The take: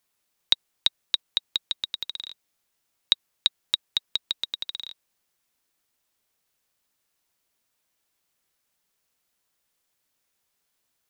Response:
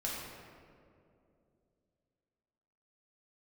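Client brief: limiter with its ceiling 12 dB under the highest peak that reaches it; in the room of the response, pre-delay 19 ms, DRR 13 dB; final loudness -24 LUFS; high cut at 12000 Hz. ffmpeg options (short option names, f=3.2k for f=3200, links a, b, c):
-filter_complex "[0:a]lowpass=12k,alimiter=limit=-14.5dB:level=0:latency=1,asplit=2[a][b];[1:a]atrim=start_sample=2205,adelay=19[c];[b][c]afir=irnorm=-1:irlink=0,volume=-16.5dB[d];[a][d]amix=inputs=2:normalize=0,volume=10dB"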